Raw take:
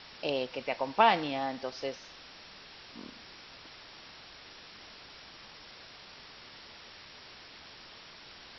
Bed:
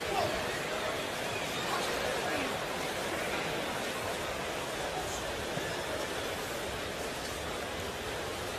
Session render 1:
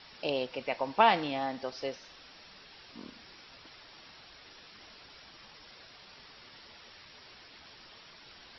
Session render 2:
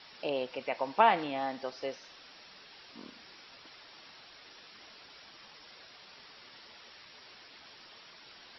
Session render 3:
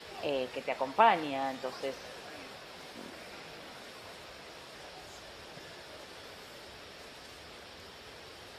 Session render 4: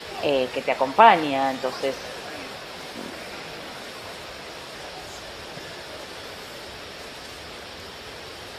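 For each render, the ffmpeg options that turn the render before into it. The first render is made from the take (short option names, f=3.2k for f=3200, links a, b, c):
-af "afftdn=nr=6:nf=-52"
-filter_complex "[0:a]lowshelf=f=130:g=-11.5,acrossover=split=2800[a][b];[b]acompressor=threshold=-48dB:ratio=4:attack=1:release=60[c];[a][c]amix=inputs=2:normalize=0"
-filter_complex "[1:a]volume=-14.5dB[a];[0:a][a]amix=inputs=2:normalize=0"
-af "volume=11dB,alimiter=limit=-1dB:level=0:latency=1"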